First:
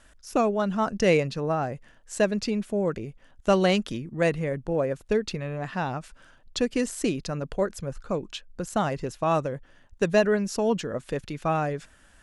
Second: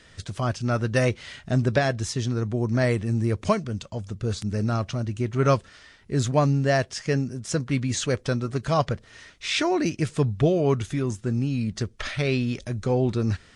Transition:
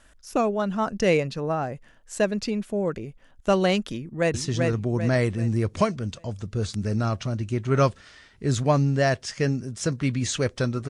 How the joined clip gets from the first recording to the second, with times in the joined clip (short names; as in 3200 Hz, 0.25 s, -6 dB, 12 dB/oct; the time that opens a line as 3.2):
first
3.95–4.34 echo throw 0.39 s, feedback 40%, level -3 dB
4.34 switch to second from 2.02 s